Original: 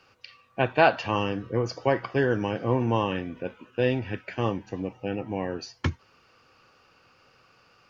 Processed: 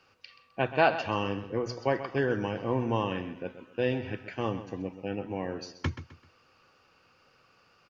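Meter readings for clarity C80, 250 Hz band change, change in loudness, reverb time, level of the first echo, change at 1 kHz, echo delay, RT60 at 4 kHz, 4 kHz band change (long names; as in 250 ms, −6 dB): no reverb audible, −4.0 dB, −4.0 dB, no reverb audible, −12.5 dB, −4.0 dB, 129 ms, no reverb audible, −4.0 dB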